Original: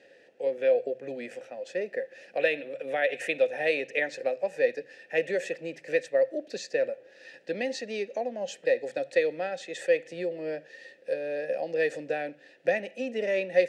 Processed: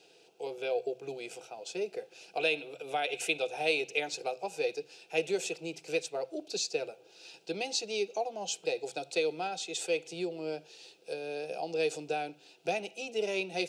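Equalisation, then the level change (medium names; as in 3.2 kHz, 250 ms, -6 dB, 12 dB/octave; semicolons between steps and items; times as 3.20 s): tilt shelf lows -5 dB; static phaser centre 370 Hz, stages 8; band-stop 1.7 kHz, Q 9.4; +4.5 dB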